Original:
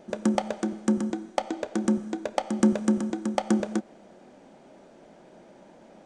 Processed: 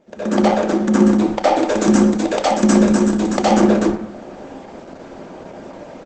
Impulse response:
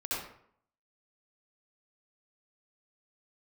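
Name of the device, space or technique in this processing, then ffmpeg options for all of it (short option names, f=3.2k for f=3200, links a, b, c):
speakerphone in a meeting room: -filter_complex "[0:a]asplit=3[a][b][c];[a]afade=t=out:st=1.58:d=0.02[d];[b]aemphasis=mode=production:type=50kf,afade=t=in:st=1.58:d=0.02,afade=t=out:st=3.45:d=0.02[e];[c]afade=t=in:st=3.45:d=0.02[f];[d][e][f]amix=inputs=3:normalize=0[g];[1:a]atrim=start_sample=2205[h];[g][h]afir=irnorm=-1:irlink=0,asplit=2[i][j];[j]adelay=120,highpass=300,lowpass=3.4k,asoftclip=type=hard:threshold=-16.5dB,volume=-19dB[k];[i][k]amix=inputs=2:normalize=0,dynaudnorm=f=200:g=3:m=13dB" -ar 48000 -c:a libopus -b:a 12k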